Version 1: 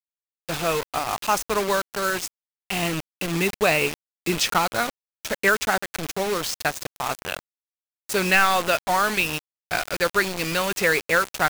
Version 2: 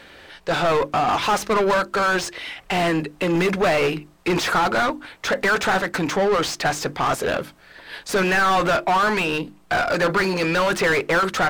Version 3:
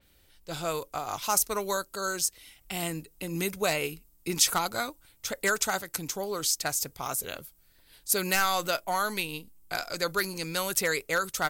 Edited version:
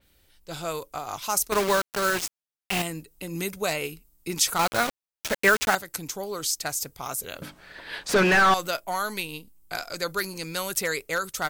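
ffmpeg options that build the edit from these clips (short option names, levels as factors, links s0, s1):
-filter_complex "[0:a]asplit=2[s0][s1];[2:a]asplit=4[s2][s3][s4][s5];[s2]atrim=end=1.522[s6];[s0]atrim=start=1.518:end=2.822[s7];[s3]atrim=start=2.818:end=4.592[s8];[s1]atrim=start=4.588:end=5.752[s9];[s4]atrim=start=5.748:end=7.422[s10];[1:a]atrim=start=7.418:end=8.542[s11];[s5]atrim=start=8.538[s12];[s6][s7]acrossfade=d=0.004:c1=hsin:c2=hsin[s13];[s13][s8]acrossfade=d=0.004:c1=hsin:c2=hsin[s14];[s14][s9]acrossfade=d=0.004:c1=hsin:c2=hsin[s15];[s15][s10]acrossfade=d=0.004:c1=hsin:c2=hsin[s16];[s16][s11]acrossfade=d=0.004:c1=hsin:c2=hsin[s17];[s17][s12]acrossfade=d=0.004:c1=hsin:c2=hsin"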